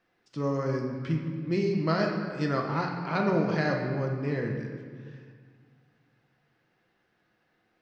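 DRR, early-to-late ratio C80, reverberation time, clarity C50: 0.5 dB, 5.5 dB, 1.9 s, 3.5 dB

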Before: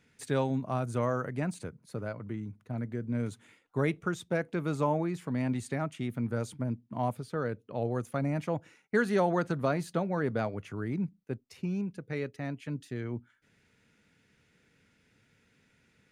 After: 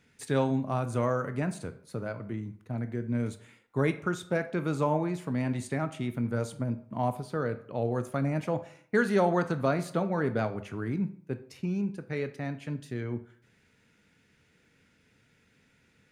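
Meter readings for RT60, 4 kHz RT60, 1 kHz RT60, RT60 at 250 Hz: 0.55 s, 0.40 s, 0.55 s, 0.65 s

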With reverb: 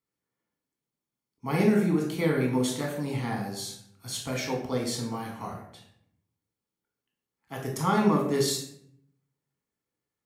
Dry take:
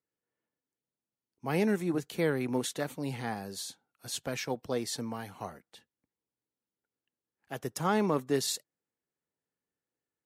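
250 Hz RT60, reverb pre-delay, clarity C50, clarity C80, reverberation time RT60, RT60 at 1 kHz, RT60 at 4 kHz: 0.90 s, 4 ms, 4.5 dB, 8.0 dB, 0.65 s, 0.65 s, 0.45 s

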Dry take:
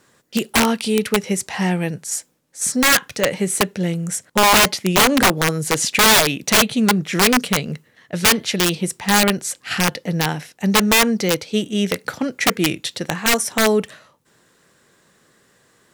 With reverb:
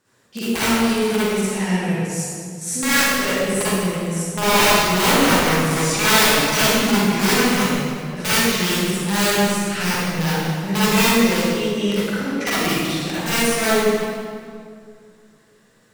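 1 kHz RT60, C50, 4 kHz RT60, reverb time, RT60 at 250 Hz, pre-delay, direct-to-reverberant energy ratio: 2.0 s, -8.0 dB, 1.5 s, 2.2 s, 2.6 s, 39 ms, -11.5 dB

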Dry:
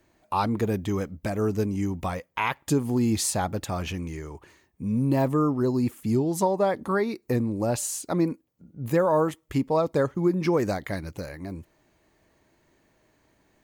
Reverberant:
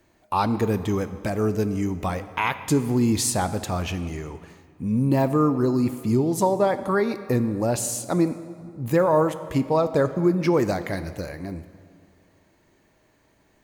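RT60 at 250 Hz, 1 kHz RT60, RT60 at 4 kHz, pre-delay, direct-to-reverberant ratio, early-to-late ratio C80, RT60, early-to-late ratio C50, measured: 2.3 s, 2.2 s, 1.5 s, 15 ms, 11.5 dB, 13.5 dB, 2.2 s, 12.5 dB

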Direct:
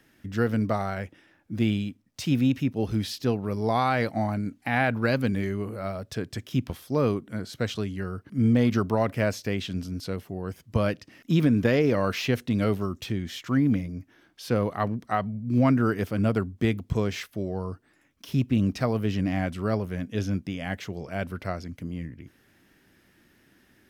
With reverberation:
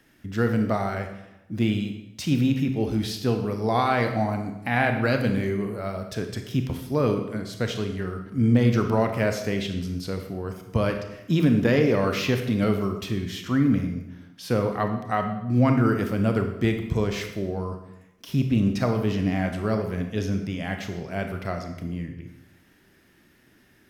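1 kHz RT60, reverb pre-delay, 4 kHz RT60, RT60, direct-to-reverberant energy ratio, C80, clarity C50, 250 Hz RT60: 0.85 s, 26 ms, 0.75 s, 0.90 s, 5.0 dB, 9.5 dB, 7.0 dB, 0.95 s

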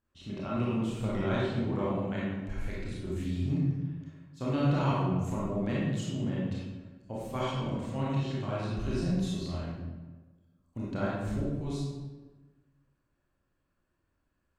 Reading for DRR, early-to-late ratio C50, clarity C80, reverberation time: -7.0 dB, -3.0 dB, 1.0 dB, 1.3 s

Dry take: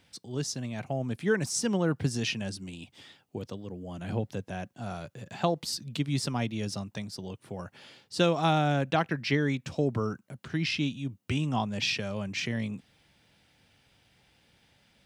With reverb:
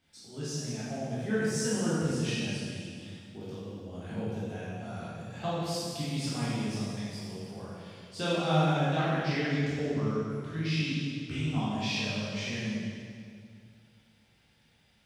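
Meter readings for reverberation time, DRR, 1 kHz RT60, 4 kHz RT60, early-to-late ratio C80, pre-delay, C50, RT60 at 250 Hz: 2.1 s, -10.0 dB, 2.0 s, 1.9 s, -1.0 dB, 11 ms, -4.0 dB, 2.5 s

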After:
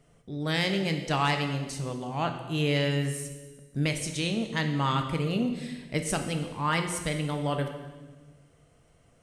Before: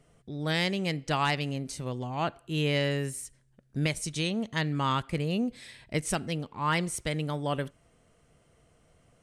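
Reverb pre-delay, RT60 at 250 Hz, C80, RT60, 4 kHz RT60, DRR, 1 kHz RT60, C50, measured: 7 ms, 1.7 s, 9.5 dB, 1.3 s, 1.2 s, 5.0 dB, 1.2 s, 7.5 dB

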